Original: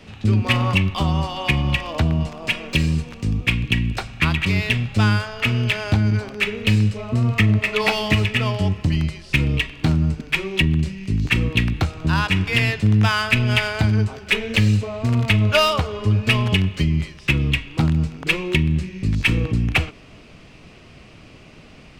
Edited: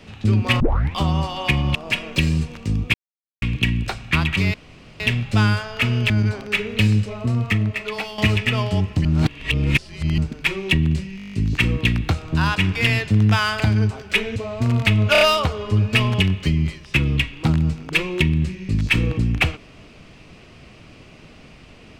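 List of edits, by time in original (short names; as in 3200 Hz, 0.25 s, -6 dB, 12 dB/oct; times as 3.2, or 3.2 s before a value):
0.6 tape start 0.35 s
1.75–2.32 cut
3.51 insert silence 0.48 s
4.63 insert room tone 0.46 s
5.73–5.98 cut
6.93–8.06 fade out, to -12 dB
8.93–10.06 reverse
11.05 stutter 0.02 s, 9 plays
13.32–13.77 cut
14.53–14.79 cut
15.55 stutter 0.03 s, 4 plays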